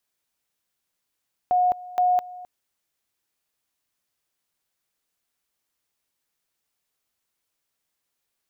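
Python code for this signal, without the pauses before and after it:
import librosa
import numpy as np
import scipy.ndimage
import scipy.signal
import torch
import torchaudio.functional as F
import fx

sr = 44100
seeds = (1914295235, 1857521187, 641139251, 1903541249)

y = fx.two_level_tone(sr, hz=724.0, level_db=-16.5, drop_db=19.5, high_s=0.21, low_s=0.26, rounds=2)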